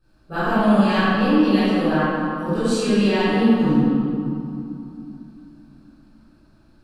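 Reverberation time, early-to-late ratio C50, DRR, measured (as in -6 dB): 2.9 s, -7.5 dB, -16.5 dB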